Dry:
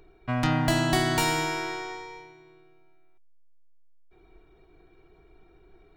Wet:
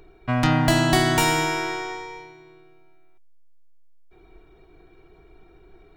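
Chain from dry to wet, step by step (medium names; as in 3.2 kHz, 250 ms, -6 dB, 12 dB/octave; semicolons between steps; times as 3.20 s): 1.11–2.20 s: band-stop 4.4 kHz, Q 7.7; trim +5 dB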